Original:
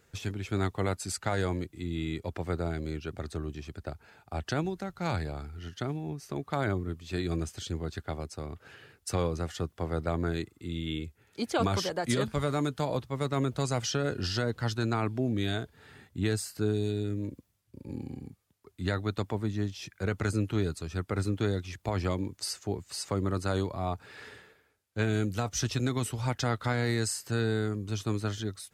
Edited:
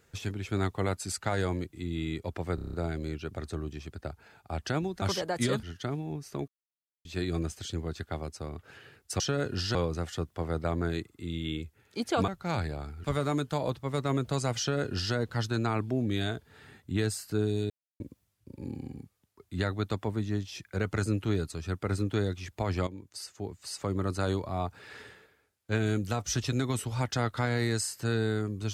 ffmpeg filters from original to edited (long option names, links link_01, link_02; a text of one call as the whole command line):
ffmpeg -i in.wav -filter_complex "[0:a]asplit=18[link_01][link_02][link_03][link_04][link_05][link_06][link_07][link_08][link_09][link_10][link_11][link_12][link_13][link_14][link_15][link_16][link_17][link_18];[link_01]atrim=end=2.582[link_19];[link_02]atrim=start=2.548:end=2.582[link_20];[link_03]atrim=start=2.548:end=2.582[link_21];[link_04]atrim=start=2.548:end=2.582[link_22];[link_05]atrim=start=2.548:end=2.582[link_23];[link_06]atrim=start=2.548:end=2.582[link_24];[link_07]atrim=start=2.548:end=4.842[link_25];[link_08]atrim=start=11.698:end=12.312[link_26];[link_09]atrim=start=5.598:end=6.45,asetpts=PTS-STARTPTS,afade=type=out:start_time=0.848:duration=0.004:curve=hsin[link_27];[link_10]atrim=start=6.45:end=7.02,asetpts=PTS-STARTPTS,volume=0[link_28];[link_11]atrim=start=7.02:end=9.172,asetpts=PTS-STARTPTS,afade=type=in:duration=0.004:curve=hsin[link_29];[link_12]atrim=start=13.858:end=14.412[link_30];[link_13]atrim=start=9.168:end=11.702[link_31];[link_14]atrim=start=4.838:end=5.602[link_32];[link_15]atrim=start=12.308:end=16.97,asetpts=PTS-STARTPTS,afade=type=out:start_time=4.658:duration=0.004:curve=hsin[link_33];[link_16]atrim=start=16.97:end=17.27,asetpts=PTS-STARTPTS,volume=0[link_34];[link_17]atrim=start=17.27:end=22.14,asetpts=PTS-STARTPTS,afade=type=in:duration=0.004:curve=hsin,afade=type=out:start_time=4.866:duration=0.004:curve=hsin:silence=0.251189[link_35];[link_18]atrim=start=22.14,asetpts=PTS-STARTPTS,afade=type=in:duration=1.26:silence=0.251189[link_36];[link_19][link_20]acrossfade=duration=0.004:curve1=hsin:curve2=hsin[link_37];[link_37][link_21]acrossfade=duration=0.004:curve1=hsin:curve2=hsin[link_38];[link_38][link_22]acrossfade=duration=0.004:curve1=hsin:curve2=hsin[link_39];[link_39][link_23]acrossfade=duration=0.004:curve1=hsin:curve2=hsin[link_40];[link_40][link_24]acrossfade=duration=0.004:curve1=hsin:curve2=hsin[link_41];[link_41][link_25]acrossfade=duration=0.004:curve1=hsin:curve2=hsin[link_42];[link_42][link_26]acrossfade=duration=0.004:curve1=hsin:curve2=hsin[link_43];[link_27][link_28][link_29]concat=n=3:v=0:a=1[link_44];[link_43][link_44]acrossfade=duration=0.004:curve1=hsin:curve2=hsin[link_45];[link_45][link_30]acrossfade=duration=0.004:curve1=hsin:curve2=hsin[link_46];[link_46][link_31]acrossfade=duration=0.004:curve1=hsin:curve2=hsin[link_47];[link_47][link_32]acrossfade=duration=0.004:curve1=hsin:curve2=hsin[link_48];[link_33][link_34][link_35][link_36]concat=n=4:v=0:a=1[link_49];[link_48][link_49]acrossfade=duration=0.004:curve1=hsin:curve2=hsin" out.wav